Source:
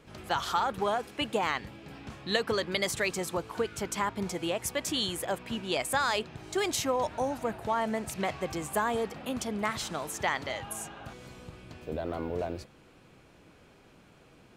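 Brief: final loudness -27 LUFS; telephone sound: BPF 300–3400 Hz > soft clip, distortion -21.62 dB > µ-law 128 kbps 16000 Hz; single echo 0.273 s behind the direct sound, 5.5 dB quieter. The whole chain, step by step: BPF 300–3400 Hz; echo 0.273 s -5.5 dB; soft clip -18.5 dBFS; gain +6 dB; µ-law 128 kbps 16000 Hz

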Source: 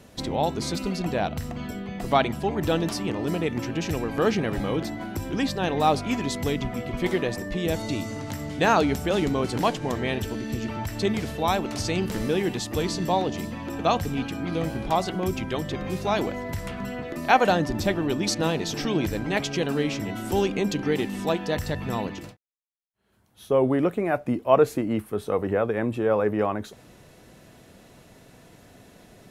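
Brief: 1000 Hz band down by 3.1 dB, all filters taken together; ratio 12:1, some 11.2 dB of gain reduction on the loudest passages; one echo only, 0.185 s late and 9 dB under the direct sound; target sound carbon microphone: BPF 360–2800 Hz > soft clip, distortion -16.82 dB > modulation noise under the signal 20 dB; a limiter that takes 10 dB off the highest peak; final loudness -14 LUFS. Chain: bell 1000 Hz -4 dB; compressor 12:1, threshold -25 dBFS; limiter -24.5 dBFS; BPF 360–2800 Hz; echo 0.185 s -9 dB; soft clip -30.5 dBFS; modulation noise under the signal 20 dB; gain +25.5 dB

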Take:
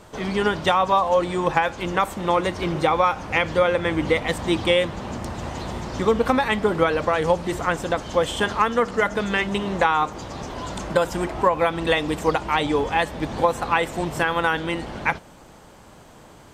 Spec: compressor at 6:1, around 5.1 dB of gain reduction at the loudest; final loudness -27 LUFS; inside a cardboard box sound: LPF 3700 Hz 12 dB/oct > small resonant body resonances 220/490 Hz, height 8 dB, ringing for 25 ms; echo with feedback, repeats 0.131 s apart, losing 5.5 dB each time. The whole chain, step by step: compressor 6:1, threshold -19 dBFS; LPF 3700 Hz 12 dB/oct; feedback echo 0.131 s, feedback 53%, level -5.5 dB; small resonant body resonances 220/490 Hz, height 8 dB, ringing for 25 ms; gain -7 dB

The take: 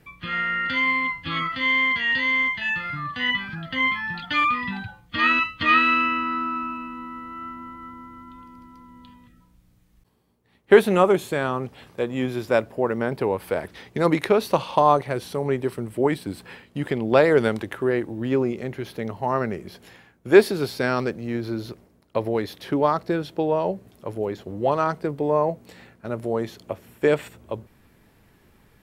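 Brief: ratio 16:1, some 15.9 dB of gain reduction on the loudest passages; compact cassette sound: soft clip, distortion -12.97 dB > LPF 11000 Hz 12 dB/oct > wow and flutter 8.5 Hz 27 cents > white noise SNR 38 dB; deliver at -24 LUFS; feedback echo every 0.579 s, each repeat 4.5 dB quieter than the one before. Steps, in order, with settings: compressor 16:1, threshold -23 dBFS; feedback echo 0.579 s, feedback 60%, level -4.5 dB; soft clip -23.5 dBFS; LPF 11000 Hz 12 dB/oct; wow and flutter 8.5 Hz 27 cents; white noise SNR 38 dB; gain +6.5 dB

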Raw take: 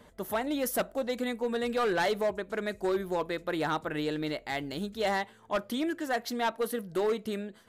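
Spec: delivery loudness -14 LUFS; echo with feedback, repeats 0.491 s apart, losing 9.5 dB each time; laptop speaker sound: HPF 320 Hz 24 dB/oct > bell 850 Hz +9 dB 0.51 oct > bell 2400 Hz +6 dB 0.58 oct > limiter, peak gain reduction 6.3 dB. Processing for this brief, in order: HPF 320 Hz 24 dB/oct; bell 850 Hz +9 dB 0.51 oct; bell 2400 Hz +6 dB 0.58 oct; feedback echo 0.491 s, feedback 33%, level -9.5 dB; gain +16.5 dB; limiter -2.5 dBFS

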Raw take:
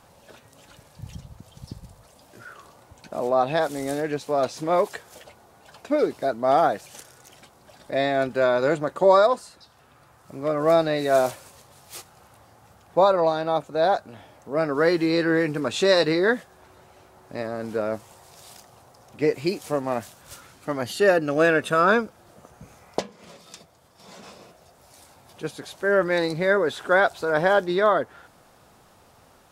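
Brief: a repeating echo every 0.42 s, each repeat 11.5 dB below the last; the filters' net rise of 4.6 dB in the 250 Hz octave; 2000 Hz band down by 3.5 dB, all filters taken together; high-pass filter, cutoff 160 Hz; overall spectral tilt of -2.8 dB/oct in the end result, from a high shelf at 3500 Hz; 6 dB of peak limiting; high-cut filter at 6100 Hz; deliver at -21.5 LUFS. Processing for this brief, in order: HPF 160 Hz; LPF 6100 Hz; bell 250 Hz +7.5 dB; bell 2000 Hz -3.5 dB; high shelf 3500 Hz -6 dB; limiter -12 dBFS; feedback echo 0.42 s, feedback 27%, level -11.5 dB; gain +2.5 dB

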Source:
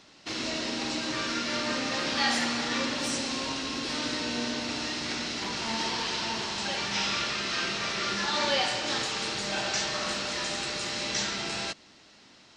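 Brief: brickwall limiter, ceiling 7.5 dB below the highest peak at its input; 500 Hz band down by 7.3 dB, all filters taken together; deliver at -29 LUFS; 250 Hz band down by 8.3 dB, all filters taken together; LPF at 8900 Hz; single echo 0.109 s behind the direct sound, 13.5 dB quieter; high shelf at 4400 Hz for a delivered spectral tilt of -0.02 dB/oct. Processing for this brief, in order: LPF 8900 Hz; bell 250 Hz -8 dB; bell 500 Hz -7.5 dB; high shelf 4400 Hz +8.5 dB; limiter -19.5 dBFS; echo 0.109 s -13.5 dB; gain -1.5 dB

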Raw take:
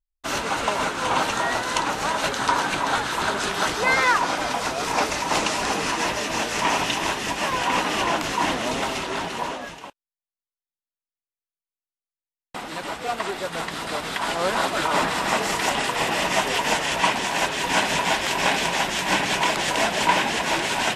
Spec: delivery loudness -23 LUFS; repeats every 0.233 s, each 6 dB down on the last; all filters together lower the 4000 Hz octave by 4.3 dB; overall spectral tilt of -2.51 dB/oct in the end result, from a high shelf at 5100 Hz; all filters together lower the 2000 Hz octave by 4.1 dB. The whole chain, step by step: bell 2000 Hz -4.5 dB; bell 4000 Hz -5.5 dB; high shelf 5100 Hz +3 dB; feedback echo 0.233 s, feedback 50%, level -6 dB; gain +0.5 dB

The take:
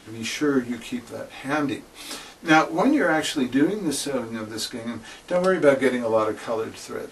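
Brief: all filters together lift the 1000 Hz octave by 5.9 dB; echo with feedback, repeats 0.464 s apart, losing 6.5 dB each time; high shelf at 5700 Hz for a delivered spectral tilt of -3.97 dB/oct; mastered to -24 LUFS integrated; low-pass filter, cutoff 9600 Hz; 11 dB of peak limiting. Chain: LPF 9600 Hz; bell 1000 Hz +8 dB; high shelf 5700 Hz +3.5 dB; limiter -12 dBFS; feedback echo 0.464 s, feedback 47%, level -6.5 dB; gain -0.5 dB

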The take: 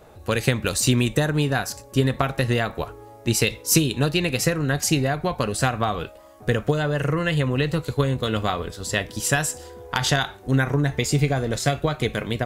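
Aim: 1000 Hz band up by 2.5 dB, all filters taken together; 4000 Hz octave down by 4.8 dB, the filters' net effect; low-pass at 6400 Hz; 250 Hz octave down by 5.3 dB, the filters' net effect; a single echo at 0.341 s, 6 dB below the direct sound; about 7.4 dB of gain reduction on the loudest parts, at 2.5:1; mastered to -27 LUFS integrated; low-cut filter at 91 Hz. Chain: HPF 91 Hz; LPF 6400 Hz; bell 250 Hz -8 dB; bell 1000 Hz +4.5 dB; bell 4000 Hz -6 dB; compressor 2.5:1, threshold -29 dBFS; echo 0.341 s -6 dB; gain +3.5 dB

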